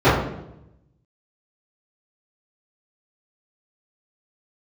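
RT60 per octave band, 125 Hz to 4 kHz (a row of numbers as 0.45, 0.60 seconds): 1.3, 1.0, 0.95, 0.75, 0.65, 0.60 seconds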